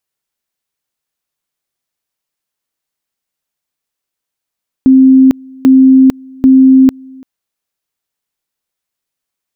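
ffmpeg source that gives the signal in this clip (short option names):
-f lavfi -i "aevalsrc='pow(10,(-1.5-28*gte(mod(t,0.79),0.45))/20)*sin(2*PI*263*t)':d=2.37:s=44100"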